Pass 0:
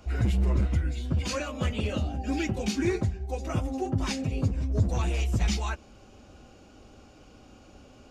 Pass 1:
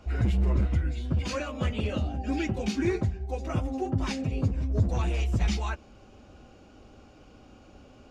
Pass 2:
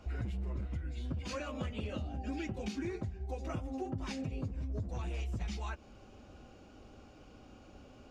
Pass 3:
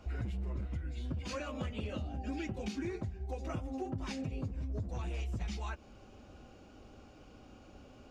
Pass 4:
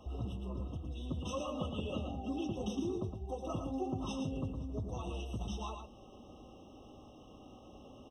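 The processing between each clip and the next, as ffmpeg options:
ffmpeg -i in.wav -af "highshelf=frequency=6200:gain=-10" out.wav
ffmpeg -i in.wav -af "acompressor=threshold=-32dB:ratio=6,volume=-3dB" out.wav
ffmpeg -i in.wav -af "asoftclip=type=hard:threshold=-28.5dB" out.wav
ffmpeg -i in.wav -af "lowshelf=frequency=86:gain=-9,aecho=1:1:113:0.473,afftfilt=real='re*eq(mod(floor(b*sr/1024/1300),2),0)':imag='im*eq(mod(floor(b*sr/1024/1300),2),0)':win_size=1024:overlap=0.75,volume=2dB" out.wav

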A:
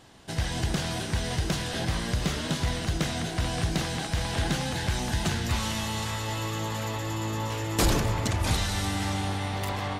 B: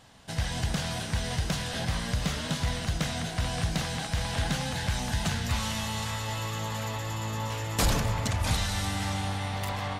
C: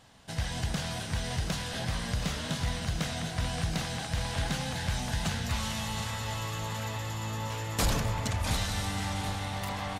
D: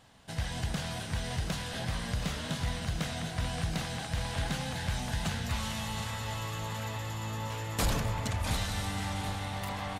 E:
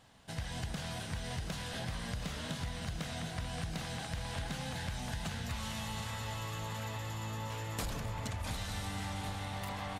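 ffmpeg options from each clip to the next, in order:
ffmpeg -i in.wav -af "equalizer=frequency=350:width=3.6:gain=-12,volume=-1dB" out.wav
ffmpeg -i in.wav -af "aecho=1:1:726|1452|2178|2904|3630:0.251|0.126|0.0628|0.0314|0.0157,volume=-2.5dB" out.wav
ffmpeg -i in.wav -af "equalizer=frequency=5700:width=1.5:gain=-2.5,volume=-1.5dB" out.wav
ffmpeg -i in.wav -af "acompressor=threshold=-32dB:ratio=6,volume=-2.5dB" out.wav

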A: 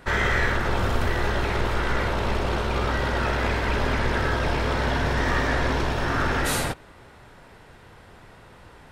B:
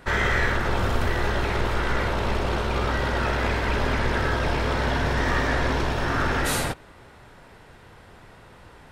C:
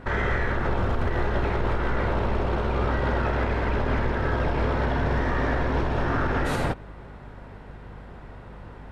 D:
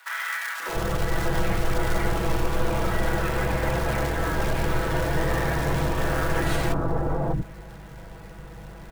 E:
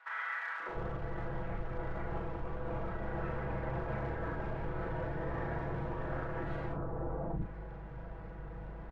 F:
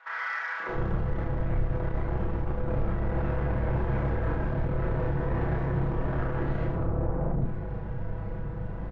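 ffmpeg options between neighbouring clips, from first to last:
ffmpeg -i in.wav -af anull out.wav
ffmpeg -i in.wav -af "lowpass=frequency=1200:poles=1,aeval=exprs='val(0)+0.00398*(sin(2*PI*50*n/s)+sin(2*PI*2*50*n/s)/2+sin(2*PI*3*50*n/s)/3+sin(2*PI*4*50*n/s)/4+sin(2*PI*5*50*n/s)/5)':channel_layout=same,alimiter=limit=-20.5dB:level=0:latency=1:release=132,volume=5dB" out.wav
ffmpeg -i in.wav -filter_complex "[0:a]aecho=1:1:6.1:0.81,acrossover=split=2700[link_01][link_02];[link_01]acrusher=bits=4:mode=log:mix=0:aa=0.000001[link_03];[link_03][link_02]amix=inputs=2:normalize=0,acrossover=split=290|1100[link_04][link_05][link_06];[link_05]adelay=600[link_07];[link_04]adelay=690[link_08];[link_08][link_07][link_06]amix=inputs=3:normalize=0" out.wav
ffmpeg -i in.wav -filter_complex "[0:a]lowpass=1600,areverse,acompressor=threshold=-29dB:ratio=6,areverse,asplit=2[link_01][link_02];[link_02]adelay=38,volume=-6dB[link_03];[link_01][link_03]amix=inputs=2:normalize=0,volume=-5dB" out.wav
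ffmpeg -i in.wav -af "lowshelf=frequency=320:gain=9.5,aresample=16000,asoftclip=type=tanh:threshold=-28.5dB,aresample=44100,aecho=1:1:30|72|130.8|213.1|328.4:0.631|0.398|0.251|0.158|0.1,volume=4.5dB" out.wav

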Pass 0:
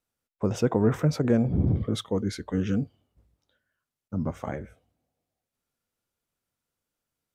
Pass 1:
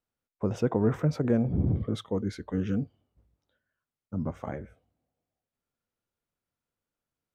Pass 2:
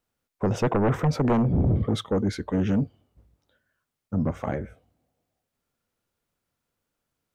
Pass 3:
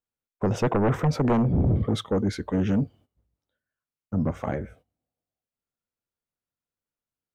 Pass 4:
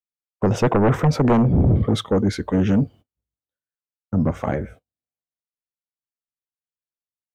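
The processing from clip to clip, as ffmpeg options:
ffmpeg -i in.wav -af "highshelf=frequency=3400:gain=-8.5,volume=-2.5dB" out.wav
ffmpeg -i in.wav -af "aeval=exprs='0.251*sin(PI/2*2.82*val(0)/0.251)':channel_layout=same,volume=-5dB" out.wav
ffmpeg -i in.wav -af "agate=range=-14dB:threshold=-51dB:ratio=16:detection=peak" out.wav
ffmpeg -i in.wav -af "agate=range=-20dB:threshold=-46dB:ratio=16:detection=peak,volume=5.5dB" out.wav

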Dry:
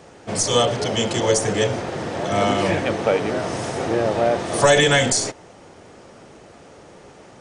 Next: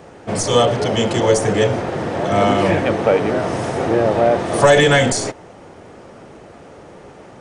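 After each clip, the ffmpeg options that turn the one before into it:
ffmpeg -i in.wav -af "equalizer=frequency=6200:width_type=o:width=2.2:gain=-7.5,acontrast=29" out.wav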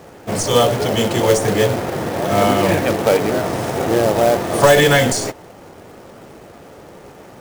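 ffmpeg -i in.wav -af "acrusher=bits=3:mode=log:mix=0:aa=0.000001" out.wav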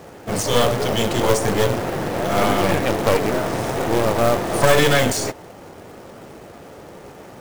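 ffmpeg -i in.wav -af "aeval=exprs='clip(val(0),-1,0.0631)':channel_layout=same" out.wav

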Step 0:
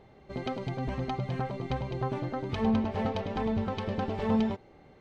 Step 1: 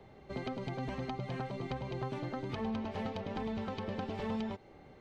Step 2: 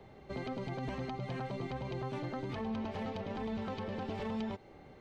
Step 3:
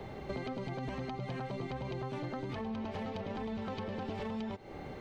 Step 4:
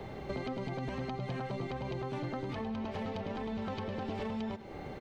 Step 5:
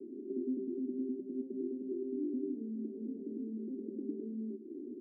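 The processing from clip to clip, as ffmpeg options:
ffmpeg -i in.wav -filter_complex "[0:a]acrossover=split=140|280|830|2100[link_01][link_02][link_03][link_04][link_05];[link_01]acompressor=threshold=-48dB:ratio=4[link_06];[link_02]acompressor=threshold=-42dB:ratio=4[link_07];[link_03]acompressor=threshold=-43dB:ratio=4[link_08];[link_04]acompressor=threshold=-48dB:ratio=4[link_09];[link_05]acompressor=threshold=-51dB:ratio=4[link_10];[link_06][link_07][link_08][link_09][link_10]amix=inputs=5:normalize=0" out.wav
ffmpeg -i in.wav -af "alimiter=level_in=7.5dB:limit=-24dB:level=0:latency=1:release=16,volume=-7.5dB,volume=1dB" out.wav
ffmpeg -i in.wav -af "acompressor=threshold=-47dB:ratio=6,volume=10.5dB" out.wav
ffmpeg -i in.wav -filter_complex "[0:a]asplit=2[link_01][link_02];[link_02]adelay=105,volume=-13dB,highshelf=frequency=4000:gain=-2.36[link_03];[link_01][link_03]amix=inputs=2:normalize=0,volume=1dB" out.wav
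ffmpeg -i in.wav -af "asuperpass=centerf=300:order=8:qfactor=2,volume=6dB" out.wav

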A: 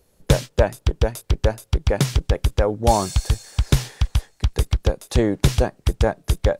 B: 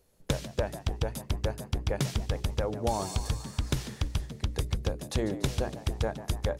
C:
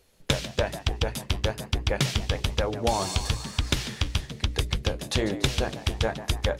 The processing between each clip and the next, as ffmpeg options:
ffmpeg -i in.wav -filter_complex "[0:a]bandreject=frequency=60:width_type=h:width=6,bandreject=frequency=120:width_type=h:width=6,bandreject=frequency=180:width_type=h:width=6,bandreject=frequency=240:width_type=h:width=6,bandreject=frequency=300:width_type=h:width=6,bandreject=frequency=360:width_type=h:width=6,bandreject=frequency=420:width_type=h:width=6,acompressor=threshold=-18dB:ratio=6,asplit=2[link_01][link_02];[link_02]asplit=7[link_03][link_04][link_05][link_06][link_07][link_08][link_09];[link_03]adelay=145,afreqshift=80,volume=-14dB[link_10];[link_04]adelay=290,afreqshift=160,volume=-18dB[link_11];[link_05]adelay=435,afreqshift=240,volume=-22dB[link_12];[link_06]adelay=580,afreqshift=320,volume=-26dB[link_13];[link_07]adelay=725,afreqshift=400,volume=-30.1dB[link_14];[link_08]adelay=870,afreqshift=480,volume=-34.1dB[link_15];[link_09]adelay=1015,afreqshift=560,volume=-38.1dB[link_16];[link_10][link_11][link_12][link_13][link_14][link_15][link_16]amix=inputs=7:normalize=0[link_17];[link_01][link_17]amix=inputs=2:normalize=0,volume=-6.5dB" out.wav
ffmpeg -i in.wav -af "flanger=delay=2.5:depth=8.5:regen=-66:speed=1.1:shape=sinusoidal,equalizer=frequency=2900:width_type=o:width=2.2:gain=8.5,volume=7dB" out.wav

